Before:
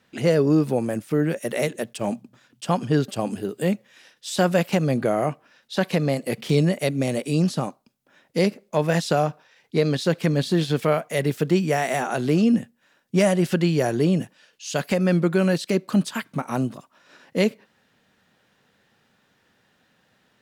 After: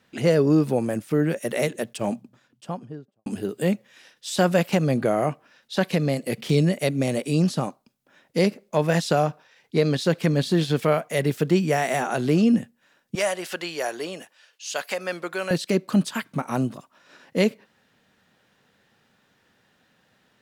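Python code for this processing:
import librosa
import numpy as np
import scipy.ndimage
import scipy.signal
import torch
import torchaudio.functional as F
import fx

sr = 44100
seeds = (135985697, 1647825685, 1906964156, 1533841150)

y = fx.studio_fade_out(x, sr, start_s=1.95, length_s=1.31)
y = fx.dynamic_eq(y, sr, hz=940.0, q=0.96, threshold_db=-35.0, ratio=4.0, max_db=-4, at=(5.84, 6.81), fade=0.02)
y = fx.highpass(y, sr, hz=670.0, slope=12, at=(13.15, 15.51))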